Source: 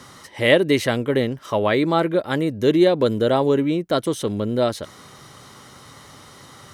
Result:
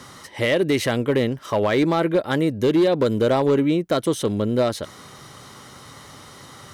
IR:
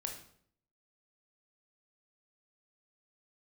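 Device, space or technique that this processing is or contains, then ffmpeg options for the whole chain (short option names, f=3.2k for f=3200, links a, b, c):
limiter into clipper: -af "alimiter=limit=-10.5dB:level=0:latency=1:release=95,asoftclip=type=hard:threshold=-14dB,volume=1.5dB"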